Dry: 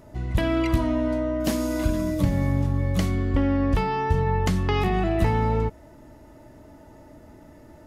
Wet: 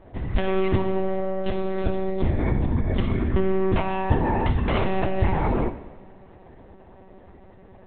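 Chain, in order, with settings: monotone LPC vocoder at 8 kHz 190 Hz; two-slope reverb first 0.97 s, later 3.1 s, from -18 dB, DRR 9 dB

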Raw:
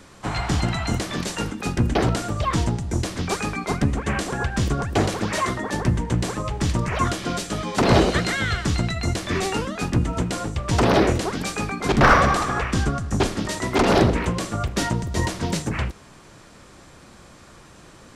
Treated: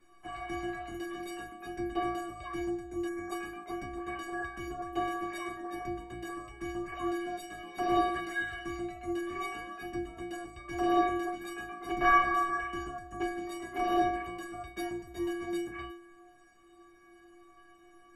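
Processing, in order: band shelf 5700 Hz -11 dB; metallic resonator 340 Hz, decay 0.81 s, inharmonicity 0.03; spectral gain 3.08–3.31, 2300–5300 Hz -18 dB; gain +8.5 dB

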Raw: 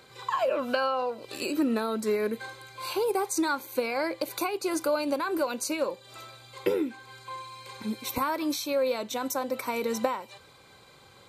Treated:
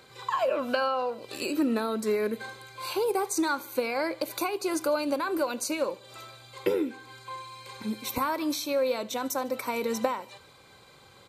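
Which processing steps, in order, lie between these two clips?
feedback echo 74 ms, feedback 52%, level -22 dB

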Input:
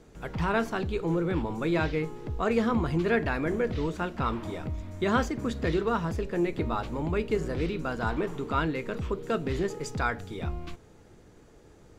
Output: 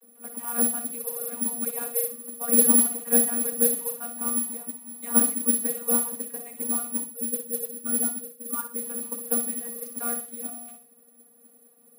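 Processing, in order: 7.01–8.83 spectral contrast raised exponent 3.3; vocoder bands 32, saw 237 Hz; modulation noise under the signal 15 dB; careless resampling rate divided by 4×, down filtered, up zero stuff; on a send: flutter echo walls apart 10.4 m, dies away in 0.4 s; on the sum: gain -3 dB

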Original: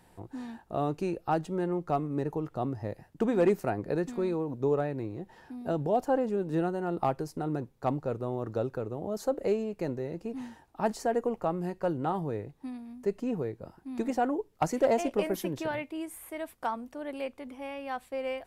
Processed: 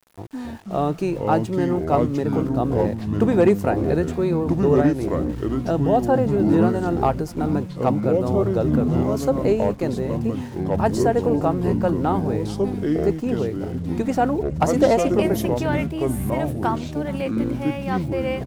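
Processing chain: sample gate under -52.5 dBFS; echoes that change speed 0.215 s, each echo -5 st, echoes 3; echo 0.423 s -22 dB; gain +8 dB

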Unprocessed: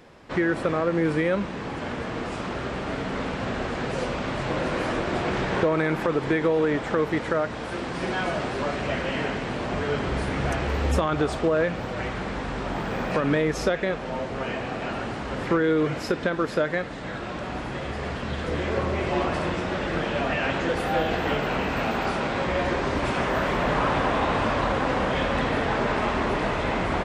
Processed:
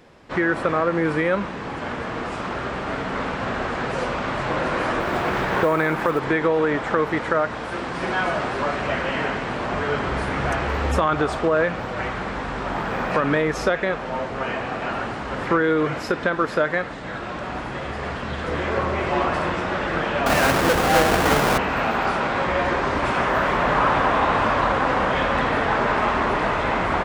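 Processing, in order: 20.26–21.58 half-waves squared off; dynamic EQ 1200 Hz, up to +7 dB, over -39 dBFS, Q 0.75; 5–6.2 short-mantissa float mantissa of 4-bit

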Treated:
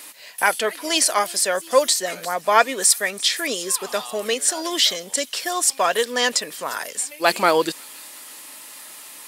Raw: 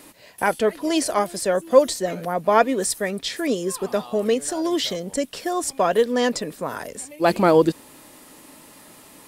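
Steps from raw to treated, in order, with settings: HPF 280 Hz 6 dB/oct; tilt shelf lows -8.5 dB, about 800 Hz; thin delay 0.35 s, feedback 51%, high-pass 3600 Hz, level -17 dB; gain +1 dB

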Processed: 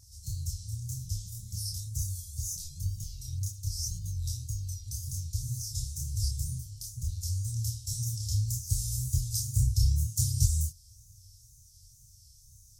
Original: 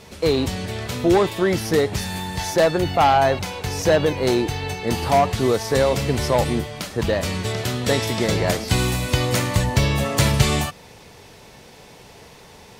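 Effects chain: Chebyshev band-stop 110–5700 Hz, order 4; wow and flutter 130 cents; chorus voices 2, 0.72 Hz, delay 27 ms, depth 4.4 ms

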